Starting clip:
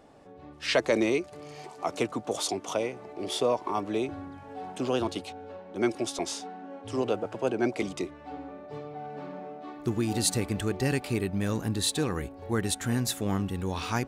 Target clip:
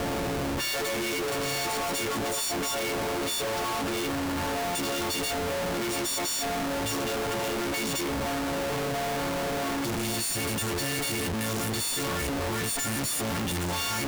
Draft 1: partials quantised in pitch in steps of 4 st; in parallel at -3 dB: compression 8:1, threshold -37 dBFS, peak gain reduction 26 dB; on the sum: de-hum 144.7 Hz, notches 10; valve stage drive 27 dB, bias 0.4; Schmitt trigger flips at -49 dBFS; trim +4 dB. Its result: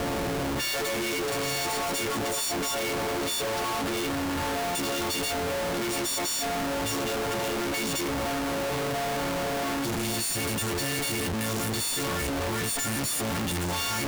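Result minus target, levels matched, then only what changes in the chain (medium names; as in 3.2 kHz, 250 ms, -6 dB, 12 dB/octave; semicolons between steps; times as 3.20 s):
compression: peak gain reduction -10 dB
change: compression 8:1, threshold -48.5 dBFS, peak gain reduction 36 dB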